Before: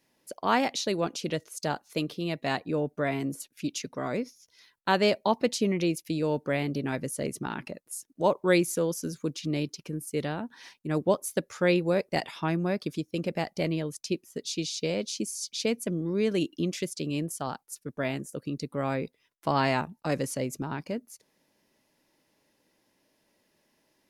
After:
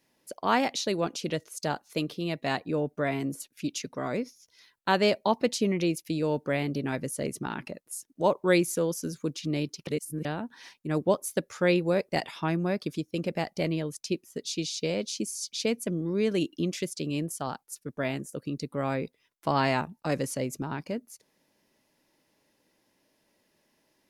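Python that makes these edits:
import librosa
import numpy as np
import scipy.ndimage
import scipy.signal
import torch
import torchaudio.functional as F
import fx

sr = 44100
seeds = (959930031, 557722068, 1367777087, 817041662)

y = fx.edit(x, sr, fx.reverse_span(start_s=9.87, length_s=0.38), tone=tone)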